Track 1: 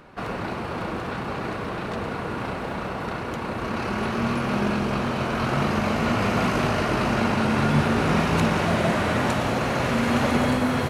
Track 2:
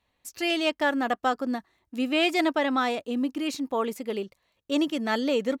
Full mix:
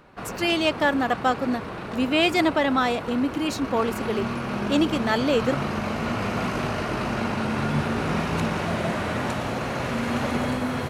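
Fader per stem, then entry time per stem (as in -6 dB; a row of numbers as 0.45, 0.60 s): -4.0, +3.0 dB; 0.00, 0.00 s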